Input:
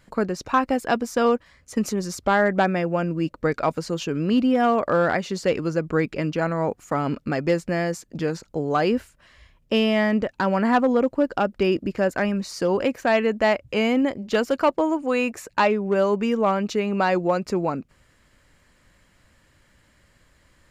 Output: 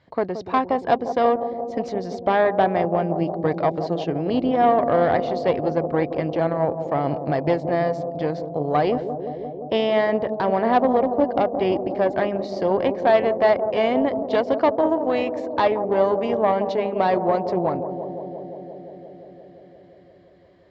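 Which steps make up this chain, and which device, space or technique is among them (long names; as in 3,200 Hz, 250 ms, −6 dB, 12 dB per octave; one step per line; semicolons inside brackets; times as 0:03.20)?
analogue delay pedal into a guitar amplifier (bucket-brigade delay 174 ms, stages 1,024, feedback 82%, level −9 dB; tube saturation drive 11 dB, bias 0.7; loudspeaker in its box 88–4,200 Hz, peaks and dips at 100 Hz +4 dB, 210 Hz −9 dB, 690 Hz +6 dB, 1,400 Hz −8 dB, 2,600 Hz −8 dB)
level +3.5 dB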